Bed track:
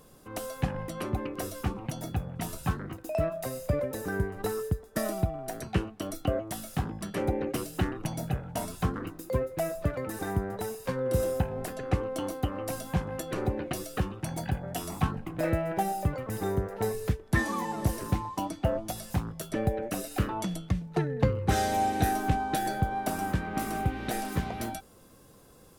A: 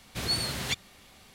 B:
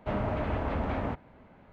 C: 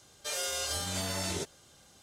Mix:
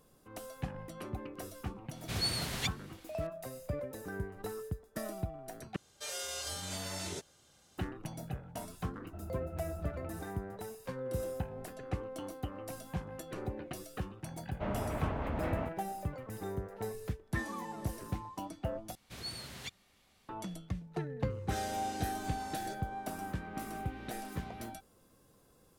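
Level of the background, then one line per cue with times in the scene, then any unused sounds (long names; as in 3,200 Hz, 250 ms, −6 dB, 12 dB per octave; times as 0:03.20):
bed track −9.5 dB
0:01.93: mix in A −4.5 dB
0:05.76: overwrite with C −6 dB
0:09.06: mix in B −2 dB + resonances in every octave E, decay 0.2 s
0:14.54: mix in B −5.5 dB
0:18.95: overwrite with A −13.5 dB
0:21.30: mix in C −16 dB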